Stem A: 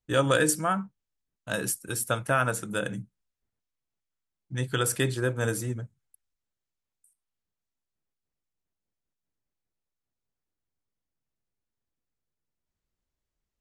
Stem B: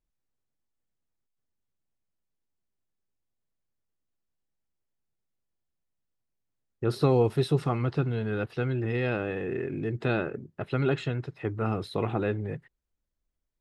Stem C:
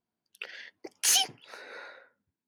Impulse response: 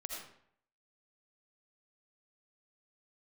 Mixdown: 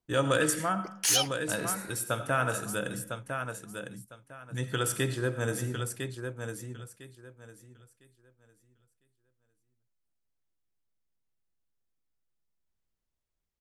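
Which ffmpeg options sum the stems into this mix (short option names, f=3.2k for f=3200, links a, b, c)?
-filter_complex "[0:a]volume=-6dB,asplit=3[a][b][c];[b]volume=-5dB[d];[c]volume=-4dB[e];[2:a]volume=-2dB,asplit=2[f][g];[g]volume=-23dB[h];[3:a]atrim=start_sample=2205[i];[d][h]amix=inputs=2:normalize=0[j];[j][i]afir=irnorm=-1:irlink=0[k];[e]aecho=0:1:1004|2008|3012|4016:1|0.22|0.0484|0.0106[l];[a][f][k][l]amix=inputs=4:normalize=0"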